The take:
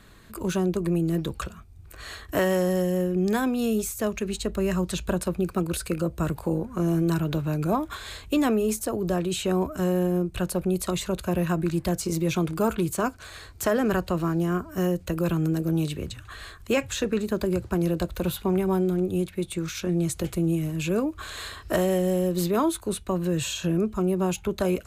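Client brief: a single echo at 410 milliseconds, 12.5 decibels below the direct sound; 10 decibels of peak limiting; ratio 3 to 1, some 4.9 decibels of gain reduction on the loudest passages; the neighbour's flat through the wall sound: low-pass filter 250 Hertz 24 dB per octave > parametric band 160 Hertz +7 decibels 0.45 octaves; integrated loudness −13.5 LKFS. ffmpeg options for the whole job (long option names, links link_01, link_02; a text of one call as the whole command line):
ffmpeg -i in.wav -af "acompressor=threshold=-26dB:ratio=3,alimiter=level_in=2.5dB:limit=-24dB:level=0:latency=1,volume=-2.5dB,lowpass=frequency=250:width=0.5412,lowpass=frequency=250:width=1.3066,equalizer=frequency=160:width_type=o:width=0.45:gain=7,aecho=1:1:410:0.237,volume=20dB" out.wav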